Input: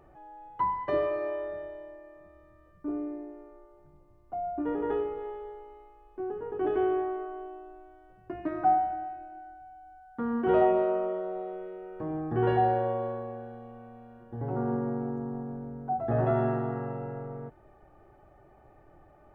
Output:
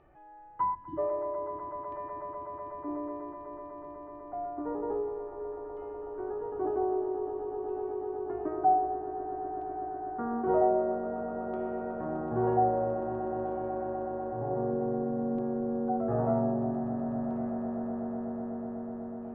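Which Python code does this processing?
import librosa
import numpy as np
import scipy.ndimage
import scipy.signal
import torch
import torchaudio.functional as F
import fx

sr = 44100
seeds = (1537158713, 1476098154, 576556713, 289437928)

y = fx.spec_erase(x, sr, start_s=0.75, length_s=0.23, low_hz=350.0, high_hz=2900.0)
y = fx.filter_lfo_lowpass(y, sr, shape='saw_down', hz=0.52, low_hz=260.0, high_hz=3000.0, q=1.6)
y = fx.echo_swell(y, sr, ms=124, loudest=8, wet_db=-12.0)
y = y * 10.0 ** (-5.0 / 20.0)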